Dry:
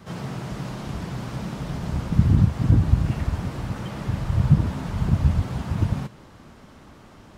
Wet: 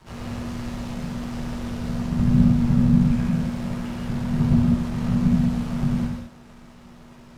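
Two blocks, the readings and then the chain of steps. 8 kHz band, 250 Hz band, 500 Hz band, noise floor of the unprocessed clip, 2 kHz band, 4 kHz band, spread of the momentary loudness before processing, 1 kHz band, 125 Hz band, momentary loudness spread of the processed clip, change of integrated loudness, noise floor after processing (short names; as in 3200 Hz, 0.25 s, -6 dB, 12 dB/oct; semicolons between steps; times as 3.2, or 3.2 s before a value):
n/a, +7.0 dB, 0.0 dB, -48 dBFS, 0.0 dB, 0.0 dB, 13 LU, -1.5 dB, -1.5 dB, 13 LU, +1.5 dB, -47 dBFS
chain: half-wave rectifier; frequency shift -240 Hz; non-linear reverb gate 0.23 s flat, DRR -2 dB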